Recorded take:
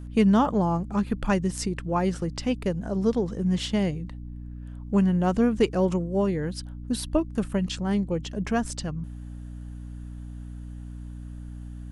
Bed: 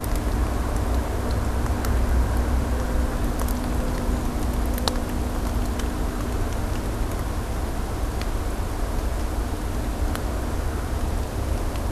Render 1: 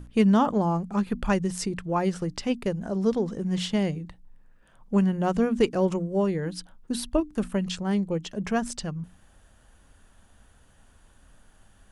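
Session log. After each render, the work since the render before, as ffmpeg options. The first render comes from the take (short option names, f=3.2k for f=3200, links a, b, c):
-af "bandreject=f=60:t=h:w=6,bandreject=f=120:t=h:w=6,bandreject=f=180:t=h:w=6,bandreject=f=240:t=h:w=6,bandreject=f=300:t=h:w=6"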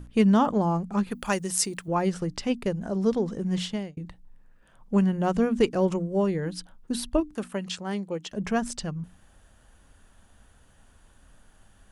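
-filter_complex "[0:a]asettb=1/sr,asplit=3[a][b][c];[a]atrim=end=1.114[d];[b]atrim=start=1.11:end=1.88,asetpts=PTS-STARTPTS,afade=t=in:d=0.004:c=qsin,afade=t=out:st=0.766:d=0.004:c=qsin,aemphasis=mode=production:type=bsi[e];[c]atrim=start=1.876[f];[d][e]acrossfade=d=0.004:c1=hsin:c2=qsin[g];[g][f]acrossfade=d=0.004:c1=qsin:c2=hsin,asettb=1/sr,asplit=3[h][i][j];[h]atrim=end=7.364[k];[i]atrim=start=7.36:end=8.32,asetpts=PTS-STARTPTS,afade=t=in:d=0.004:c=qsin,afade=t=out:st=0.956:d=0.004:c=qsin,highpass=f=380:p=1[l];[j]atrim=start=8.316[m];[k][l]acrossfade=d=0.004:c1=hsin:c2=qsin[n];[n][m]acrossfade=d=0.004:c1=qsin:c2=hsin,asplit=2[o][p];[o]atrim=end=3.97,asetpts=PTS-STARTPTS,afade=t=out:st=3.57:d=0.4[q];[p]atrim=start=3.97,asetpts=PTS-STARTPTS,afade=t=in:d=0.004:c=hsin[r];[q][r]concat=n=2:v=0:a=1"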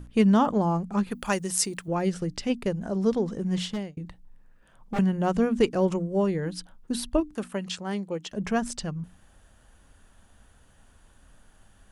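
-filter_complex "[0:a]asettb=1/sr,asplit=3[a][b][c];[a]atrim=end=1.934[d];[b]atrim=start=1.93:end=2.5,asetpts=PTS-STARTPTS,afade=t=in:d=0.004:c=qsin,afade=t=out:st=0.566:d=0.004:c=qsin,equalizer=f=1k:w=1.6:g=-6[e];[c]atrim=start=2.496[f];[d][e]acrossfade=d=0.004:c1=hsin:c2=qsin[g];[g][f]acrossfade=d=0.004:c1=qsin:c2=hsin,asettb=1/sr,asplit=3[h][i][j];[h]atrim=end=3.684[k];[i]atrim=start=3.68:end=4.99,asetpts=PTS-STARTPTS,afade=t=in:d=0.004:c=qsin,afade=t=out:st=1.306:d=0.004:c=qsin,aeval=exprs='0.0668*(abs(mod(val(0)/0.0668+3,4)-2)-1)':c=same[l];[j]atrim=start=4.986[m];[k][l]acrossfade=d=0.004:c1=hsin:c2=qsin[n];[n][m]acrossfade=d=0.004:c1=qsin:c2=hsin"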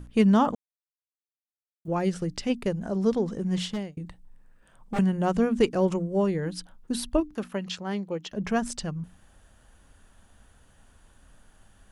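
-filter_complex "[0:a]asettb=1/sr,asplit=3[a][b][c];[a]atrim=end=3.924[d];[b]atrim=start=3.92:end=5.25,asetpts=PTS-STARTPTS,afade=t=in:d=0.004:c=qsin,afade=t=out:st=1.326:d=0.004:c=qsin,equalizer=f=8.5k:w=4.1:g=6.5[e];[c]atrim=start=5.246[f];[d][e]acrossfade=d=0.004:c1=hsin:c2=qsin[g];[g][f]acrossfade=d=0.004:c1=qsin:c2=hsin,asettb=1/sr,asplit=3[h][i][j];[h]atrim=end=7.274[k];[i]atrim=start=7.27:end=8.49,asetpts=PTS-STARTPTS,afade=t=in:d=0.004:c=qsin,afade=t=out:st=1.216:d=0.004:c=qsin,equalizer=f=8.6k:t=o:w=0.42:g=-12[l];[j]atrim=start=8.486[m];[k][l]acrossfade=d=0.004:c1=hsin:c2=qsin[n];[n][m]acrossfade=d=0.004:c1=qsin:c2=hsin,asplit=3[o][p][q];[o]atrim=end=0.55,asetpts=PTS-STARTPTS,afade=t=out:st=0.546:d=0.004:c=hsin[r];[p]atrim=start=0.55:end=1.85,asetpts=PTS-STARTPTS,volume=0[s];[q]atrim=start=1.85,asetpts=PTS-STARTPTS,afade=t=in:d=0.004:c=hsin[t];[r][s][t]concat=n=3:v=0:a=1"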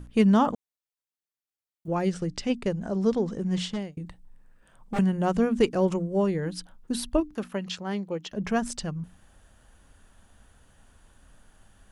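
-filter_complex "[0:a]asettb=1/sr,asplit=3[a][b][c];[a]atrim=end=2.054[d];[b]atrim=start=2.05:end=3.82,asetpts=PTS-STARTPTS,afade=t=in:d=0.004:c=qsin,afade=t=out:st=1.766:d=0.004:c=qsin,lowpass=f=9.3k:w=0.5412,lowpass=f=9.3k:w=1.3066[e];[c]atrim=start=3.816[f];[d][e]acrossfade=d=0.004:c1=hsin:c2=qsin[g];[g][f]acrossfade=d=0.004:c1=qsin:c2=hsin"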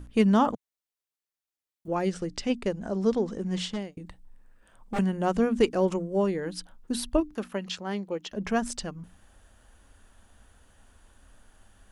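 -af "equalizer=f=150:t=o:w=0.36:g=-11.5"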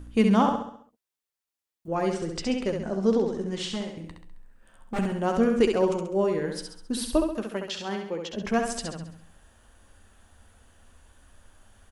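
-filter_complex "[0:a]asplit=2[a][b];[b]adelay=13,volume=-12dB[c];[a][c]amix=inputs=2:normalize=0,asplit=2[d][e];[e]aecho=0:1:67|134|201|268|335|402:0.562|0.264|0.124|0.0584|0.0274|0.0129[f];[d][f]amix=inputs=2:normalize=0"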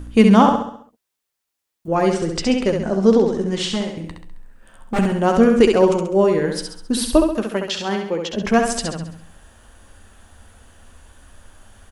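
-af "volume=9dB,alimiter=limit=-1dB:level=0:latency=1"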